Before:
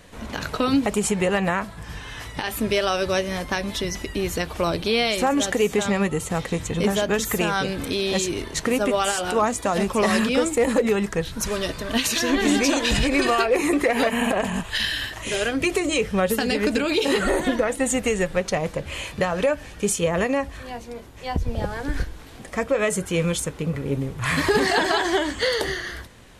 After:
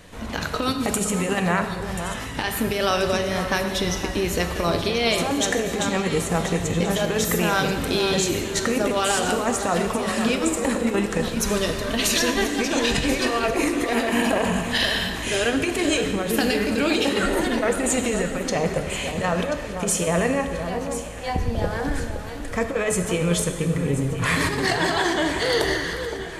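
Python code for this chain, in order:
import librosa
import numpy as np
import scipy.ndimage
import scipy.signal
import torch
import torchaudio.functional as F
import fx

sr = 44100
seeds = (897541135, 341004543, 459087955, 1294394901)

p1 = fx.high_shelf(x, sr, hz=4900.0, db=10.0, at=(0.62, 1.4))
p2 = fx.over_compress(p1, sr, threshold_db=-22.0, ratio=-0.5)
p3 = p2 + fx.echo_alternate(p2, sr, ms=517, hz=1500.0, feedback_pct=63, wet_db=-8, dry=0)
y = fx.rev_plate(p3, sr, seeds[0], rt60_s=1.6, hf_ratio=1.0, predelay_ms=0, drr_db=6.5)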